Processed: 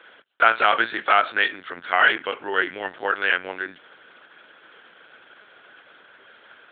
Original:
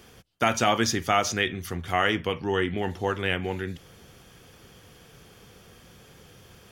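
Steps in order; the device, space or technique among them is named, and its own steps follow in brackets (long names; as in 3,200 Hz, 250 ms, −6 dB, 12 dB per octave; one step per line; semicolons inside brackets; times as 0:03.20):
talking toy (linear-prediction vocoder at 8 kHz pitch kept; high-pass filter 470 Hz 12 dB per octave; parametric band 1,500 Hz +12 dB 0.51 octaves)
level +2 dB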